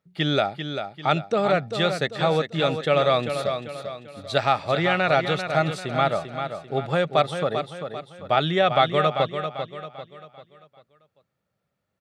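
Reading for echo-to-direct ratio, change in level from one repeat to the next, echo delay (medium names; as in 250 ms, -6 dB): -7.0 dB, -7.5 dB, 393 ms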